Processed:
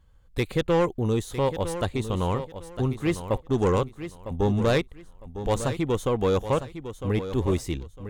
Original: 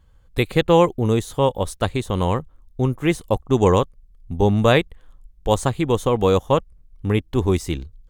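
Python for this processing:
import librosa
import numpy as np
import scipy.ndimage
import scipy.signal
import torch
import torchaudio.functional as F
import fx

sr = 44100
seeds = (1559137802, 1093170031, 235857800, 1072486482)

y = fx.self_delay(x, sr, depth_ms=0.068)
y = 10.0 ** (-11.0 / 20.0) * np.tanh(y / 10.0 ** (-11.0 / 20.0))
y = fx.echo_feedback(y, sr, ms=955, feedback_pct=24, wet_db=-11)
y = y * 10.0 ** (-4.0 / 20.0)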